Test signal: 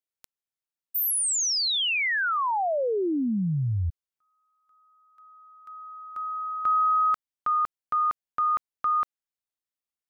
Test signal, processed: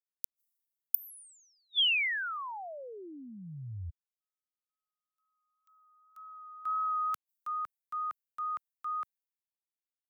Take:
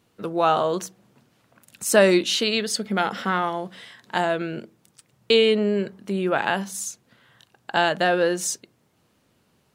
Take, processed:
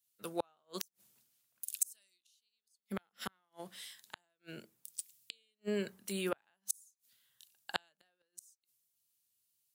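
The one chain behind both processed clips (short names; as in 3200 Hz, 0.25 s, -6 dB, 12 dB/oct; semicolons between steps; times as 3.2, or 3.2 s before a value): pre-emphasis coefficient 0.9; flipped gate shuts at -27 dBFS, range -41 dB; wow and flutter 2.1 Hz 19 cents; high shelf 10000 Hz +9 dB; three-band expander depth 70%; gain +2.5 dB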